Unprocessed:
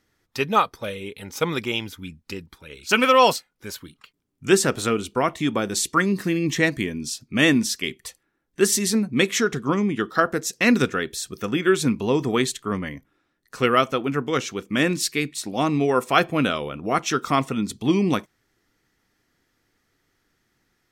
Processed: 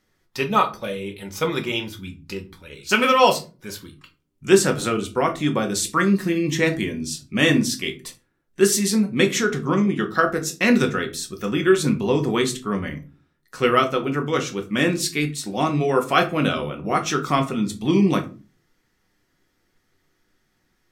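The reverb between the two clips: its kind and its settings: shoebox room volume 140 m³, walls furnished, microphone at 1 m; gain -1 dB

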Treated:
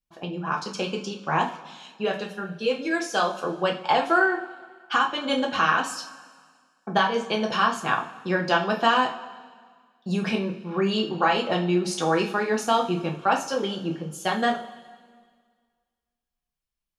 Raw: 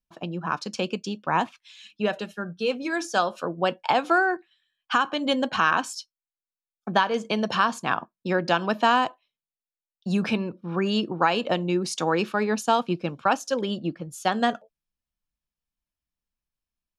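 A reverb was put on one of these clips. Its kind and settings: two-slope reverb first 0.34 s, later 1.8 s, from -18 dB, DRR -0.5 dB; gain -2.5 dB

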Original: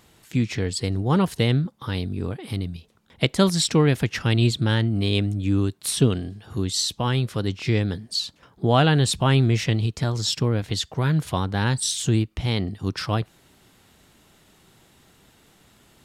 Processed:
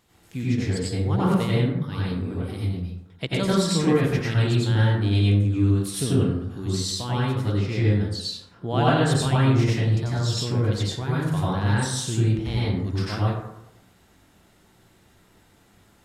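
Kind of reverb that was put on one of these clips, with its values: plate-style reverb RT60 0.86 s, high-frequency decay 0.4×, pre-delay 80 ms, DRR -7.5 dB; gain -9.5 dB

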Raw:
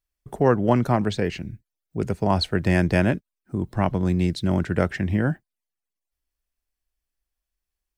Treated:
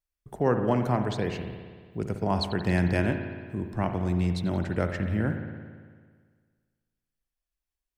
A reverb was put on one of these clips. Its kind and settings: spring tank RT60 1.7 s, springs 56 ms, chirp 35 ms, DRR 6 dB; gain -6 dB

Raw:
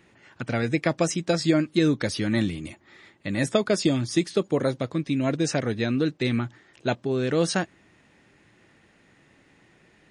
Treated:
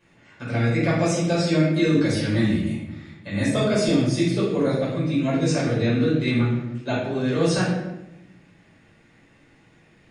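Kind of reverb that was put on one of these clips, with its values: shoebox room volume 330 m³, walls mixed, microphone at 5.3 m; gain -11 dB

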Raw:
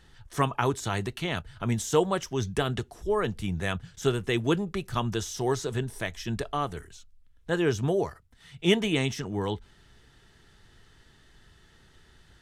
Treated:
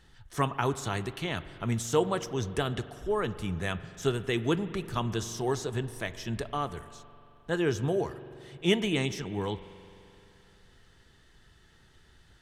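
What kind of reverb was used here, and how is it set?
spring tank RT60 2.9 s, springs 43 ms, chirp 30 ms, DRR 13.5 dB; gain -2.5 dB

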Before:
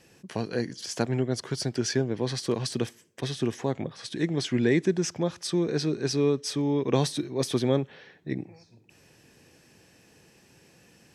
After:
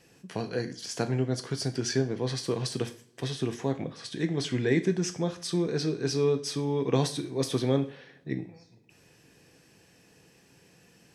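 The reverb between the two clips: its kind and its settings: two-slope reverb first 0.39 s, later 1.9 s, from -26 dB, DRR 7 dB; gain -2.5 dB

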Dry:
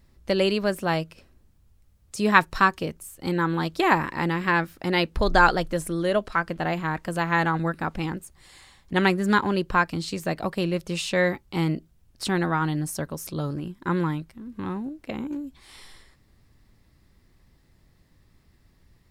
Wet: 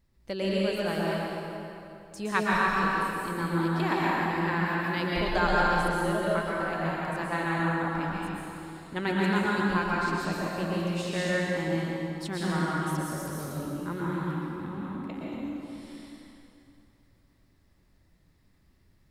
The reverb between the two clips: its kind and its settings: plate-style reverb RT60 2.9 s, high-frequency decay 0.75×, pre-delay 0.105 s, DRR -6 dB; gain -11 dB

